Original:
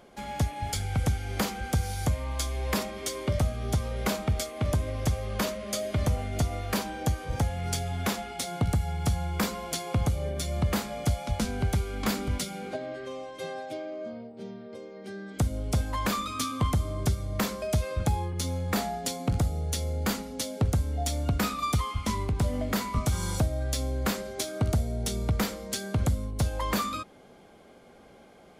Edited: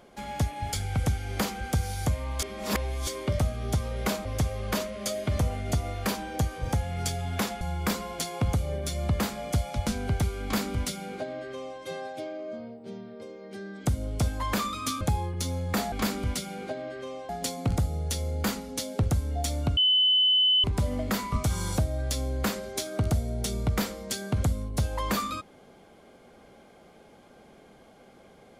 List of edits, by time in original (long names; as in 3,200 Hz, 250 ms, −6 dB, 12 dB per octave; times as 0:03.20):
0:02.42–0:03.07: reverse
0:04.25–0:04.92: remove
0:08.28–0:09.14: remove
0:11.96–0:13.33: duplicate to 0:18.91
0:16.54–0:18.00: remove
0:21.39–0:22.26: beep over 3,020 Hz −18.5 dBFS